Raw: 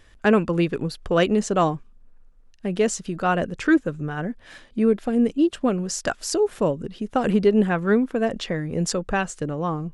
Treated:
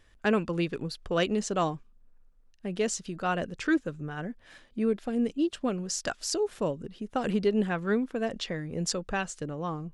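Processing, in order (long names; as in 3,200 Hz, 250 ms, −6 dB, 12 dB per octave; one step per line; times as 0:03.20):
dynamic equaliser 4,600 Hz, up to +6 dB, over −44 dBFS, Q 0.7
level −8 dB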